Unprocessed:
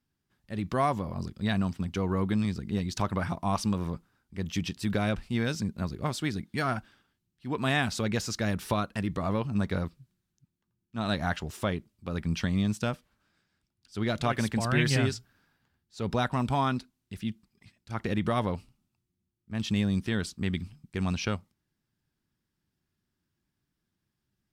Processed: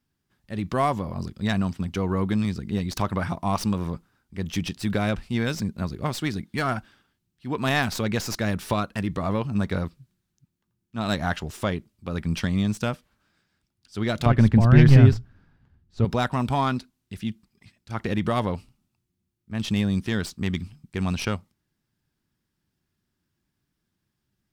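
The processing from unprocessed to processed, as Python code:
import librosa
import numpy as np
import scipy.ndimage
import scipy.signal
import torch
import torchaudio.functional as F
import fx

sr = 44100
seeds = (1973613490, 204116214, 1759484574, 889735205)

y = fx.tracing_dist(x, sr, depth_ms=0.052)
y = fx.riaa(y, sr, side='playback', at=(14.26, 16.05))
y = y * 10.0 ** (3.5 / 20.0)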